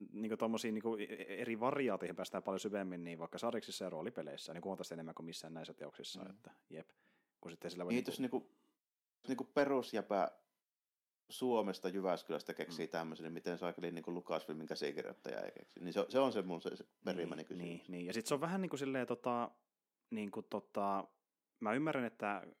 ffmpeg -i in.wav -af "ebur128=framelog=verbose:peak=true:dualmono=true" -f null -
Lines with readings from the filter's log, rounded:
Integrated loudness:
  I:         -38.6 LUFS
  Threshold: -48.9 LUFS
Loudness range:
  LRA:         5.4 LU
  Threshold: -59.5 LUFS
  LRA low:   -43.0 LUFS
  LRA high:  -37.6 LUFS
True peak:
  Peak:      -21.6 dBFS